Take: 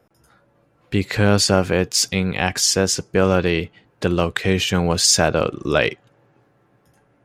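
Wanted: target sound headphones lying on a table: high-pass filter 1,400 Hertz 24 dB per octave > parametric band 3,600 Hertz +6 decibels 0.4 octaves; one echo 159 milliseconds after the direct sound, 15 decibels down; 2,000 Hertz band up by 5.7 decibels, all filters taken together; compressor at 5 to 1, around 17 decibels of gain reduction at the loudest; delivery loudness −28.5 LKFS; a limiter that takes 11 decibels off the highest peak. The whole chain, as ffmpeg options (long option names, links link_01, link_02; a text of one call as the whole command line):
ffmpeg -i in.wav -af "equalizer=frequency=2000:width_type=o:gain=8,acompressor=threshold=-29dB:ratio=5,alimiter=limit=-23.5dB:level=0:latency=1,highpass=frequency=1400:width=0.5412,highpass=frequency=1400:width=1.3066,equalizer=frequency=3600:width_type=o:width=0.4:gain=6,aecho=1:1:159:0.178,volume=7.5dB" out.wav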